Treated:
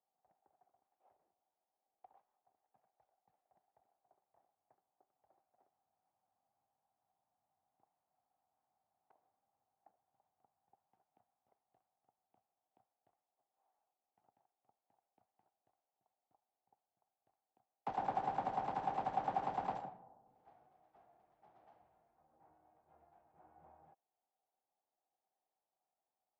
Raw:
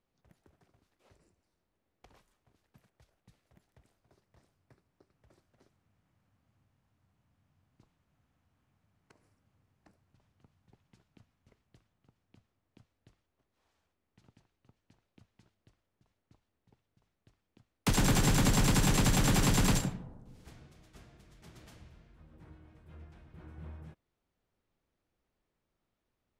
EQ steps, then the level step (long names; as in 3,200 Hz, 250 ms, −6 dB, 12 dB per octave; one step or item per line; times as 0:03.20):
resonant band-pass 770 Hz, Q 7.8
high-frequency loss of the air 110 metres
+6.0 dB